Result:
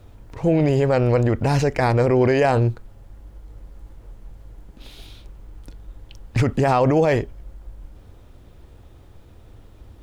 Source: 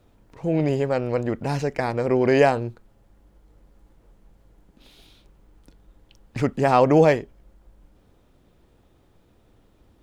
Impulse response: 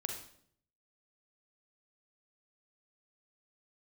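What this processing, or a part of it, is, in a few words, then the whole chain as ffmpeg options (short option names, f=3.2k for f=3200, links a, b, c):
car stereo with a boomy subwoofer: -af "lowshelf=f=130:t=q:w=1.5:g=6,alimiter=limit=-17dB:level=0:latency=1:release=44,volume=8dB"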